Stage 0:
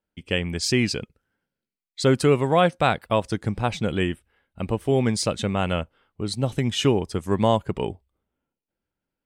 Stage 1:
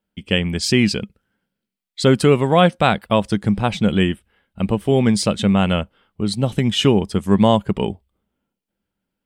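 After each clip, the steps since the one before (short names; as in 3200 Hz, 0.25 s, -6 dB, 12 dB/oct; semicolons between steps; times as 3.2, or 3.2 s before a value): thirty-one-band EQ 200 Hz +9 dB, 3150 Hz +4 dB, 6300 Hz -3 dB; gain +4 dB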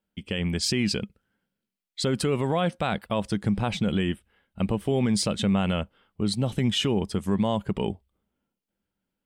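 limiter -11.5 dBFS, peak gain reduction 9.5 dB; gain -4 dB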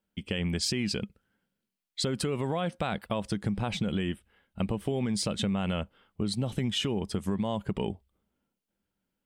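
compressor, threshold -26 dBFS, peak gain reduction 7 dB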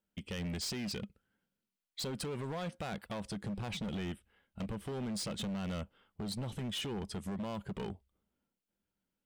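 overloaded stage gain 30 dB; gain -5 dB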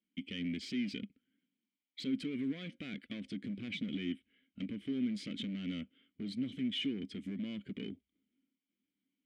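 vowel filter i; gain +12 dB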